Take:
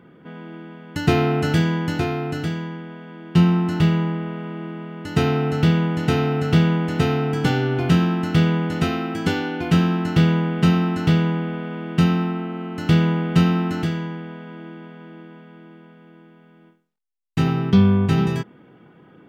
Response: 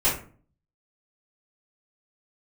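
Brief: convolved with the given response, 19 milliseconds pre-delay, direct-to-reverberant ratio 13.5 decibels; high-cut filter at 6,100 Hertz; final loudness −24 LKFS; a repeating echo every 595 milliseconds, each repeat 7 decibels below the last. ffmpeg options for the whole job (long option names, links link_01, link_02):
-filter_complex "[0:a]lowpass=6100,aecho=1:1:595|1190|1785|2380|2975:0.447|0.201|0.0905|0.0407|0.0183,asplit=2[link_01][link_02];[1:a]atrim=start_sample=2205,adelay=19[link_03];[link_02][link_03]afir=irnorm=-1:irlink=0,volume=-27.5dB[link_04];[link_01][link_04]amix=inputs=2:normalize=0,volume=-4.5dB"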